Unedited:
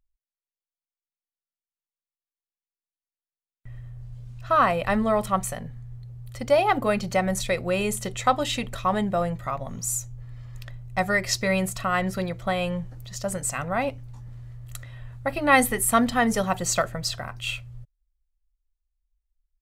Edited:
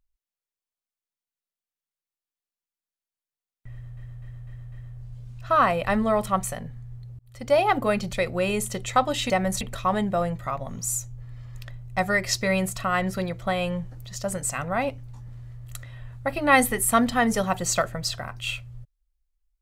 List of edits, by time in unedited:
3.72–3.97 loop, 5 plays
6.19–6.56 fade in linear
7.13–7.44 move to 8.61

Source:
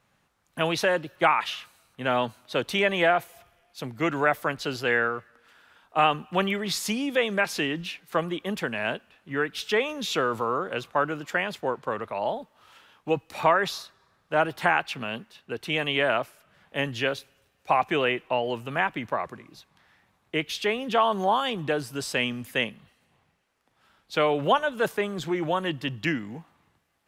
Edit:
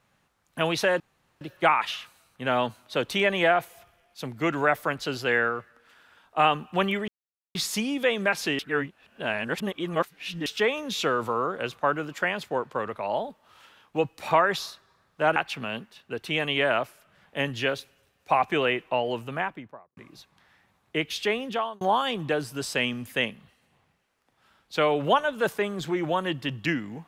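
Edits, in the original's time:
1 insert room tone 0.41 s
6.67 insert silence 0.47 s
7.71–9.58 reverse
14.48–14.75 cut
18.54–19.36 studio fade out
20.77–21.2 fade out

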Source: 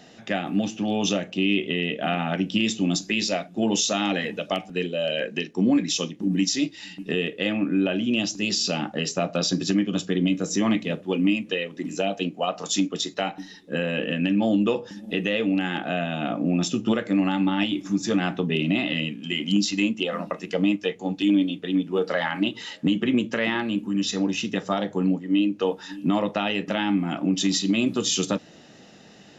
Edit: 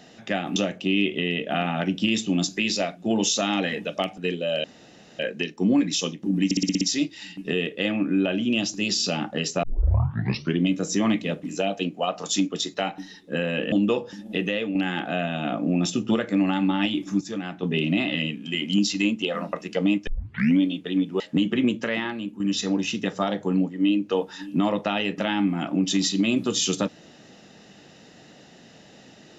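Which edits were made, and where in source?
0.56–1.08 cut
5.16 insert room tone 0.55 s
6.42 stutter 0.06 s, 7 plays
9.24 tape start 0.99 s
11.04–11.83 cut
14.12–14.5 cut
15.21–15.53 fade out, to -6.5 dB
17.99–18.41 gain -8 dB
20.85 tape start 0.53 s
21.98–22.7 cut
23.2–23.9 fade out, to -9 dB

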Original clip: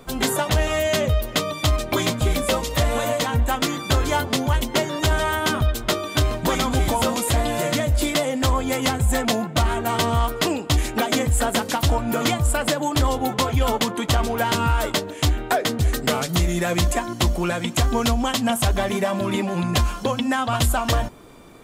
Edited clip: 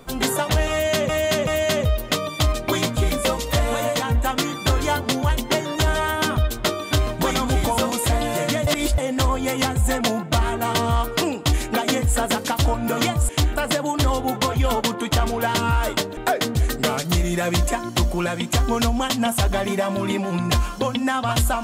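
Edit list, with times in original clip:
0.71–1.09 loop, 3 plays
7.91–8.22 reverse
15.14–15.41 move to 12.53

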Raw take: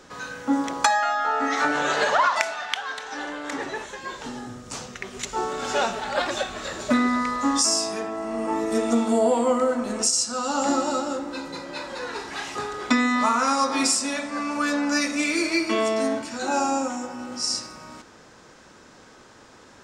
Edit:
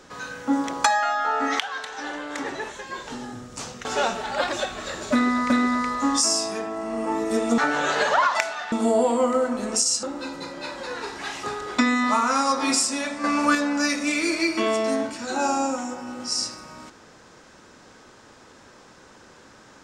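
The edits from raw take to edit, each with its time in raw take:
1.59–2.73 move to 8.99
4.99–5.63 cut
6.91–7.28 loop, 2 plays
10.3–11.15 cut
14.36–14.67 gain +5.5 dB

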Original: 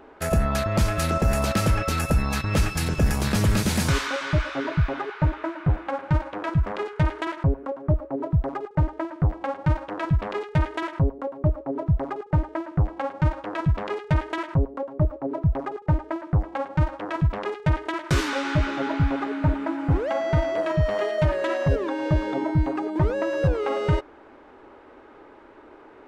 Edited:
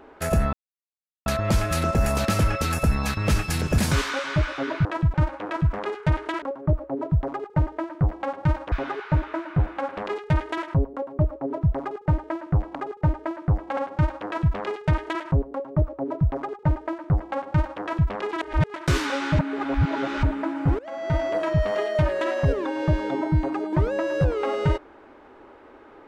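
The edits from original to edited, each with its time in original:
0.53 insert silence 0.73 s
3.05–3.75 cut
4.82–6.07 swap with 9.93–10.22
7.35–7.63 cut
15.6–16.62 copy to 13
17.56–17.97 reverse
18.62–19.46 reverse
20.02–20.47 fade in, from -21 dB

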